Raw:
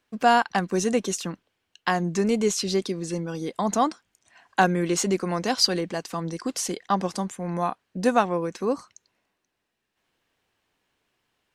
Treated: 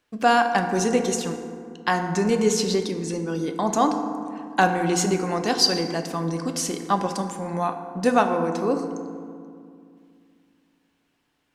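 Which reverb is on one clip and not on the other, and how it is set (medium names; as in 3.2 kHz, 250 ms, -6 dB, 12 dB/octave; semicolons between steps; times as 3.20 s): FDN reverb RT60 2.3 s, low-frequency decay 1.4×, high-frequency decay 0.4×, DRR 5.5 dB; trim +1 dB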